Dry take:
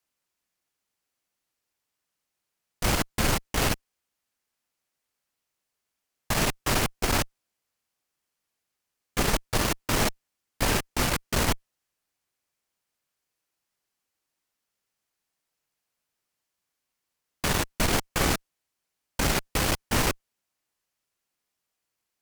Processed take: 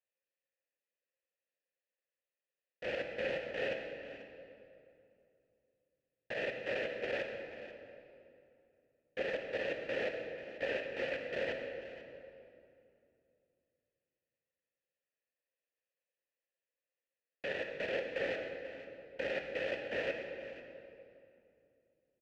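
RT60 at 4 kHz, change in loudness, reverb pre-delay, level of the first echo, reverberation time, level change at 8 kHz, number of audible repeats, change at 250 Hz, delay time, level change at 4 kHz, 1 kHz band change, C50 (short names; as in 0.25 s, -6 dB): 1.8 s, -12.5 dB, 12 ms, -15.5 dB, 2.6 s, under -35 dB, 1, -17.0 dB, 0.489 s, -17.0 dB, -19.0 dB, 4.0 dB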